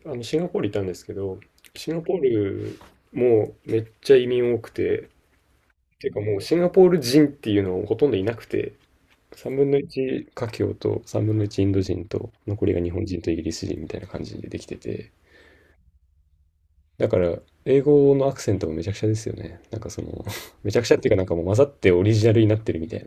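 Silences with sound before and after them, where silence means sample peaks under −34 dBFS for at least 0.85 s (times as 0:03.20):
0:05.03–0:06.01
0:15.02–0:17.00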